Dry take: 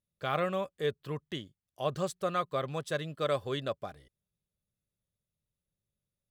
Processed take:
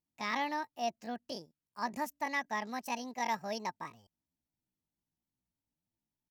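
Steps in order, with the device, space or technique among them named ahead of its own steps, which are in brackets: chipmunk voice (pitch shift +8 st); trim -3.5 dB

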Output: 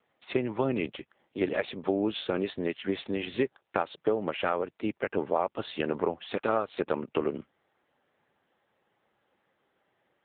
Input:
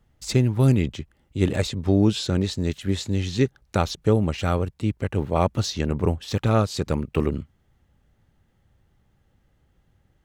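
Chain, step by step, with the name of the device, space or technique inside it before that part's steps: voicemail (band-pass 440–3000 Hz; compression 8:1, threshold -27 dBFS, peak gain reduction 10.5 dB; trim +5 dB; AMR-NB 6.7 kbps 8 kHz)

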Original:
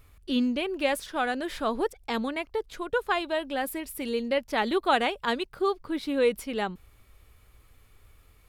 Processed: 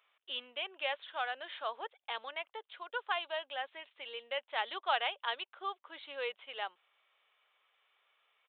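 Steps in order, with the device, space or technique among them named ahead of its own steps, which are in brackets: musical greeting card (resampled via 8 kHz; high-pass 620 Hz 24 dB/octave; peaking EQ 3.1 kHz +6 dB 0.41 oct); trim -7.5 dB

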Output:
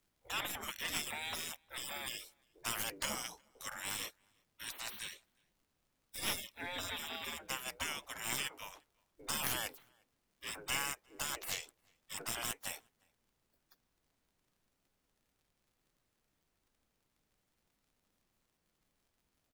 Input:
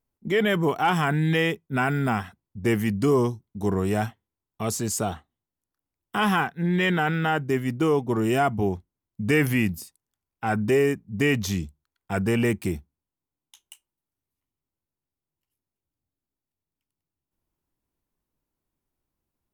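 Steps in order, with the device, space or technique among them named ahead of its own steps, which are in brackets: 8.24–8.64 s: high-pass 120 Hz 24 dB/octave; spectral gate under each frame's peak -30 dB weak; record under a worn stylus (tracing distortion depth 0.058 ms; crackle; pink noise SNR 37 dB); peaking EQ 230 Hz +3 dB 1.1 oct; echo from a far wall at 61 m, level -30 dB; trim +4.5 dB

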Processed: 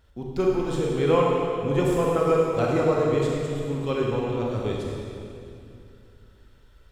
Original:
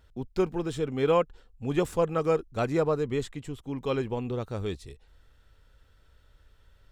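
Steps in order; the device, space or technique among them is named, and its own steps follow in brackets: stairwell (reverberation RT60 2.6 s, pre-delay 28 ms, DRR -3 dB)

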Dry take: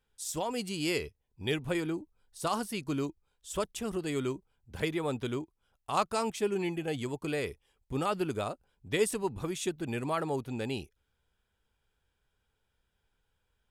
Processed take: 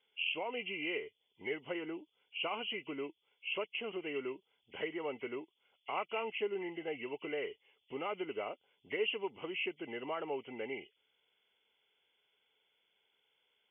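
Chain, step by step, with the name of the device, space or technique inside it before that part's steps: hearing aid with frequency lowering (knee-point frequency compression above 1.9 kHz 4:1; compression 2:1, threshold -40 dBFS, peak gain reduction 10 dB; cabinet simulation 380–6600 Hz, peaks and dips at 420 Hz +4 dB, 1.2 kHz -3 dB, 1.8 kHz -5 dB, 3.4 kHz +9 dB); trim +1 dB

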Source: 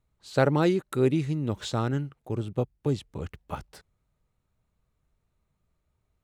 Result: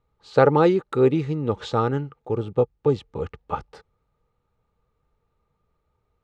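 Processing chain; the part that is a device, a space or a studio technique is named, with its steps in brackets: inside a cardboard box (low-pass 4.7 kHz 12 dB/octave; small resonant body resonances 470/850/1200 Hz, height 12 dB, ringing for 35 ms); trim +1.5 dB

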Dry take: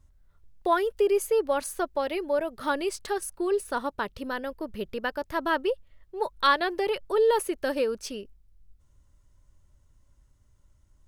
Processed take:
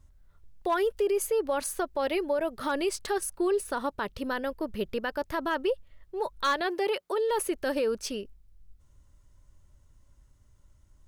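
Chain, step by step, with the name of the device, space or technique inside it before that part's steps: clipper into limiter (hard clipper -16 dBFS, distortion -23 dB; peak limiter -22 dBFS, peak gain reduction 6 dB); 6.66–7.29 s: high-pass 160 Hz -> 490 Hz 12 dB/octave; trim +2 dB

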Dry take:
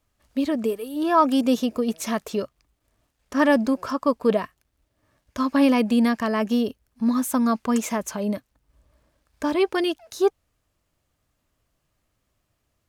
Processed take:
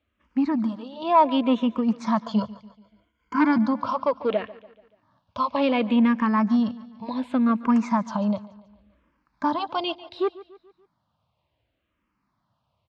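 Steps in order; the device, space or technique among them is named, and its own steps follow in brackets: 2.26–3.58 s: rippled EQ curve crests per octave 1.8, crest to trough 16 dB; barber-pole phaser into a guitar amplifier (barber-pole phaser -0.68 Hz; saturation -15.5 dBFS, distortion -17 dB; cabinet simulation 77–4000 Hz, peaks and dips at 200 Hz +4 dB, 420 Hz -7 dB, 960 Hz +8 dB, 1.8 kHz -4 dB); feedback delay 144 ms, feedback 48%, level -18.5 dB; trim +3 dB

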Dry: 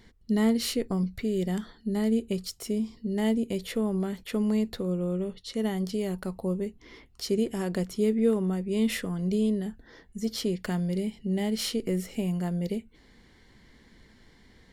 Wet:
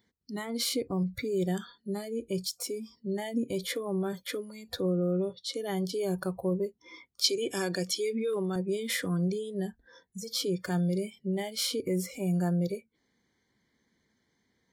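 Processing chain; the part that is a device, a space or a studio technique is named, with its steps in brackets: PA system with an anti-feedback notch (high-pass 110 Hz 12 dB/octave; Butterworth band-stop 2.7 kHz, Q 5.3; peak limiter -25 dBFS, peak gain reduction 11.5 dB); spectral noise reduction 20 dB; 7.24–8.56 s: frequency weighting D; trim +4.5 dB

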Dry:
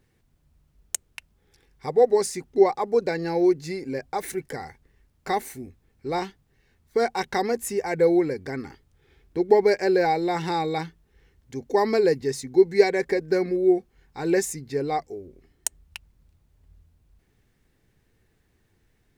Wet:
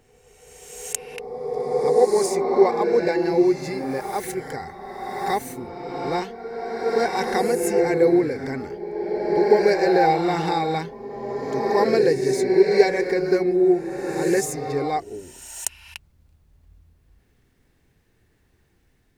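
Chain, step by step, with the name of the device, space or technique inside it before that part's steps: reverse reverb (reverse; reverberation RT60 2.6 s, pre-delay 20 ms, DRR 1.5 dB; reverse); trim +1 dB

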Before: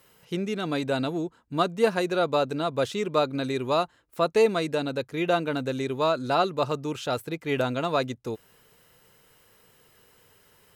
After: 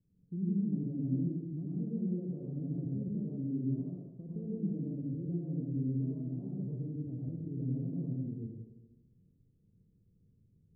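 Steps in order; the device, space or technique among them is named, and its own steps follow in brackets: club heard from the street (peak limiter -17.5 dBFS, peak gain reduction 7.5 dB; low-pass 230 Hz 24 dB/octave; reverberation RT60 1.3 s, pre-delay 82 ms, DRR -5.5 dB); trim -5 dB

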